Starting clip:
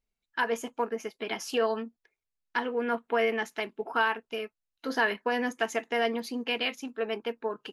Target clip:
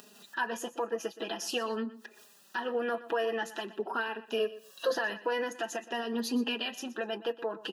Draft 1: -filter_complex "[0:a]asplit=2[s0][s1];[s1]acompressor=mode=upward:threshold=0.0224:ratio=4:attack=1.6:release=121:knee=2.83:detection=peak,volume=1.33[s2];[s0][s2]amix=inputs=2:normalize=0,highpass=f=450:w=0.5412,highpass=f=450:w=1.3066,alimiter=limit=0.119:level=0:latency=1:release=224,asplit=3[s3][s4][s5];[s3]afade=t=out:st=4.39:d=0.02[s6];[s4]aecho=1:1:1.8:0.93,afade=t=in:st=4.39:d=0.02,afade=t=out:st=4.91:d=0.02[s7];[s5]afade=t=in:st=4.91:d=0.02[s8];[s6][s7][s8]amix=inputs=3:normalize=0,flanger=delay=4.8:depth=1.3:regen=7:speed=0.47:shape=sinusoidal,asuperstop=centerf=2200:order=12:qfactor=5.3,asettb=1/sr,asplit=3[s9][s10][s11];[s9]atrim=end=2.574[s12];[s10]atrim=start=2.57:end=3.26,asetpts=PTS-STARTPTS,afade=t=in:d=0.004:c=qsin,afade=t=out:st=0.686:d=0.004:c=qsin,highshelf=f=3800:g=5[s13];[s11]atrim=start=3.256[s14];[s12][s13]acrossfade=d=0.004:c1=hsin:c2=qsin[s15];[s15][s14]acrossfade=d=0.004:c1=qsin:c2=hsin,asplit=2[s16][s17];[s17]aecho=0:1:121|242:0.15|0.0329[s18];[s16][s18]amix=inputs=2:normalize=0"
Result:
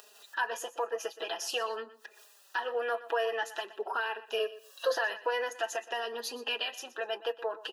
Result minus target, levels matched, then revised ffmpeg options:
250 Hz band -18.0 dB
-filter_complex "[0:a]asplit=2[s0][s1];[s1]acompressor=mode=upward:threshold=0.0224:ratio=4:attack=1.6:release=121:knee=2.83:detection=peak,volume=1.33[s2];[s0][s2]amix=inputs=2:normalize=0,highpass=f=190:w=0.5412,highpass=f=190:w=1.3066,alimiter=limit=0.119:level=0:latency=1:release=224,asplit=3[s3][s4][s5];[s3]afade=t=out:st=4.39:d=0.02[s6];[s4]aecho=1:1:1.8:0.93,afade=t=in:st=4.39:d=0.02,afade=t=out:st=4.91:d=0.02[s7];[s5]afade=t=in:st=4.91:d=0.02[s8];[s6][s7][s8]amix=inputs=3:normalize=0,flanger=delay=4.8:depth=1.3:regen=7:speed=0.47:shape=sinusoidal,asuperstop=centerf=2200:order=12:qfactor=5.3,asettb=1/sr,asplit=3[s9][s10][s11];[s9]atrim=end=2.574[s12];[s10]atrim=start=2.57:end=3.26,asetpts=PTS-STARTPTS,afade=t=in:d=0.004:c=qsin,afade=t=out:st=0.686:d=0.004:c=qsin,highshelf=f=3800:g=5[s13];[s11]atrim=start=3.256[s14];[s12][s13]acrossfade=d=0.004:c1=hsin:c2=qsin[s15];[s15][s14]acrossfade=d=0.004:c1=qsin:c2=hsin,asplit=2[s16][s17];[s17]aecho=0:1:121|242:0.15|0.0329[s18];[s16][s18]amix=inputs=2:normalize=0"

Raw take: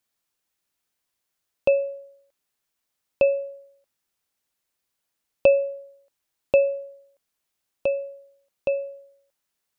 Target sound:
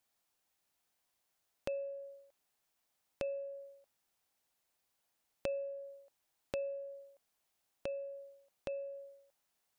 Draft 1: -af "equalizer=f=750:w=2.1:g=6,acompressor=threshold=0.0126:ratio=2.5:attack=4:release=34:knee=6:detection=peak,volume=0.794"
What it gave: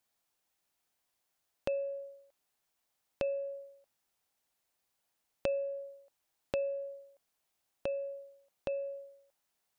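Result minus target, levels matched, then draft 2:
compression: peak gain reduction -5 dB
-af "equalizer=f=750:w=2.1:g=6,acompressor=threshold=0.00501:ratio=2.5:attack=4:release=34:knee=6:detection=peak,volume=0.794"

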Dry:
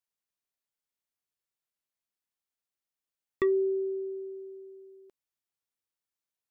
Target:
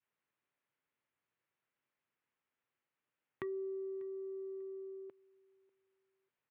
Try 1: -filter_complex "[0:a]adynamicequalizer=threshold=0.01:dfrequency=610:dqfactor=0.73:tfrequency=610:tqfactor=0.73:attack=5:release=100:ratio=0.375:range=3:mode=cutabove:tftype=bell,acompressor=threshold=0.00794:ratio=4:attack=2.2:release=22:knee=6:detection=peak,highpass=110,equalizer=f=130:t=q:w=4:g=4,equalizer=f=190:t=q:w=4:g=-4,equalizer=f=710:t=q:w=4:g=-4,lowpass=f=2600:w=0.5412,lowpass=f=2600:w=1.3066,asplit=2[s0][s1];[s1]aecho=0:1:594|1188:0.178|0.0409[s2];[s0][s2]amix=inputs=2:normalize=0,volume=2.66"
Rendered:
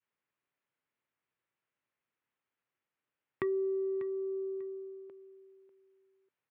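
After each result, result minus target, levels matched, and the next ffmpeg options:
compression: peak gain reduction -8 dB; echo-to-direct +9 dB
-filter_complex "[0:a]adynamicequalizer=threshold=0.01:dfrequency=610:dqfactor=0.73:tfrequency=610:tqfactor=0.73:attack=5:release=100:ratio=0.375:range=3:mode=cutabove:tftype=bell,acompressor=threshold=0.00224:ratio=4:attack=2.2:release=22:knee=6:detection=peak,highpass=110,equalizer=f=130:t=q:w=4:g=4,equalizer=f=190:t=q:w=4:g=-4,equalizer=f=710:t=q:w=4:g=-4,lowpass=f=2600:w=0.5412,lowpass=f=2600:w=1.3066,asplit=2[s0][s1];[s1]aecho=0:1:594|1188:0.178|0.0409[s2];[s0][s2]amix=inputs=2:normalize=0,volume=2.66"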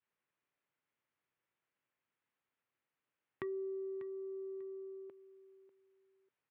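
echo-to-direct +9 dB
-filter_complex "[0:a]adynamicequalizer=threshold=0.01:dfrequency=610:dqfactor=0.73:tfrequency=610:tqfactor=0.73:attack=5:release=100:ratio=0.375:range=3:mode=cutabove:tftype=bell,acompressor=threshold=0.00224:ratio=4:attack=2.2:release=22:knee=6:detection=peak,highpass=110,equalizer=f=130:t=q:w=4:g=4,equalizer=f=190:t=q:w=4:g=-4,equalizer=f=710:t=q:w=4:g=-4,lowpass=f=2600:w=0.5412,lowpass=f=2600:w=1.3066,asplit=2[s0][s1];[s1]aecho=0:1:594|1188:0.0631|0.0145[s2];[s0][s2]amix=inputs=2:normalize=0,volume=2.66"

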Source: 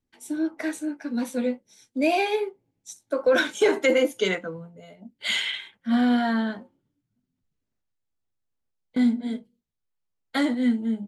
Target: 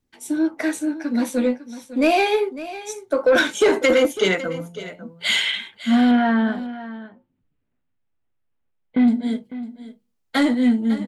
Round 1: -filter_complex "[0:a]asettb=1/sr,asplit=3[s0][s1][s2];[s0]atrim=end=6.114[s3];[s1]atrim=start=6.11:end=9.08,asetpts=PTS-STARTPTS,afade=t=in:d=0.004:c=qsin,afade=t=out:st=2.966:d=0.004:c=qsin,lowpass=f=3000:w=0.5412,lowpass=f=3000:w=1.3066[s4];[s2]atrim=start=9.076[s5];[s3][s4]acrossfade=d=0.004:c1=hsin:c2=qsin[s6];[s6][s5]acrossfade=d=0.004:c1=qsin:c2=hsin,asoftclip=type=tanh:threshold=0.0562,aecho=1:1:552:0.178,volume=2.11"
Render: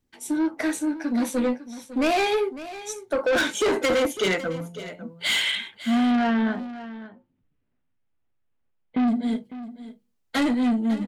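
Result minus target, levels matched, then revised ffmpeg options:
saturation: distortion +10 dB
-filter_complex "[0:a]asettb=1/sr,asplit=3[s0][s1][s2];[s0]atrim=end=6.114[s3];[s1]atrim=start=6.11:end=9.08,asetpts=PTS-STARTPTS,afade=t=in:d=0.004:c=qsin,afade=t=out:st=2.966:d=0.004:c=qsin,lowpass=f=3000:w=0.5412,lowpass=f=3000:w=1.3066[s4];[s2]atrim=start=9.076[s5];[s3][s4]acrossfade=d=0.004:c1=hsin:c2=qsin[s6];[s6][s5]acrossfade=d=0.004:c1=qsin:c2=hsin,asoftclip=type=tanh:threshold=0.168,aecho=1:1:552:0.178,volume=2.11"

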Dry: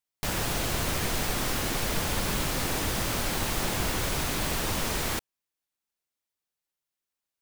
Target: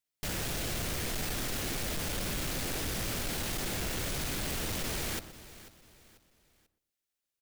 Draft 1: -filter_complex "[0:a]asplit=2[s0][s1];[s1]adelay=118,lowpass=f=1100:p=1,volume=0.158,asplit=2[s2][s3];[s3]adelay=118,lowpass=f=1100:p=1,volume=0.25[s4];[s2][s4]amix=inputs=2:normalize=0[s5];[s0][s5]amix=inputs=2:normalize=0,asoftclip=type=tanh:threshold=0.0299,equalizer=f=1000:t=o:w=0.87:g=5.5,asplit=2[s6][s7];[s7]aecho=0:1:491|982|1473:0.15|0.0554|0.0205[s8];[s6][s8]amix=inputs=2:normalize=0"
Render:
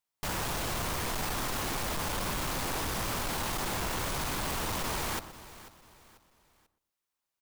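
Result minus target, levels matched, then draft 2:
1 kHz band +7.0 dB
-filter_complex "[0:a]asplit=2[s0][s1];[s1]adelay=118,lowpass=f=1100:p=1,volume=0.158,asplit=2[s2][s3];[s3]adelay=118,lowpass=f=1100:p=1,volume=0.25[s4];[s2][s4]amix=inputs=2:normalize=0[s5];[s0][s5]amix=inputs=2:normalize=0,asoftclip=type=tanh:threshold=0.0299,equalizer=f=1000:t=o:w=0.87:g=-6,asplit=2[s6][s7];[s7]aecho=0:1:491|982|1473:0.15|0.0554|0.0205[s8];[s6][s8]amix=inputs=2:normalize=0"

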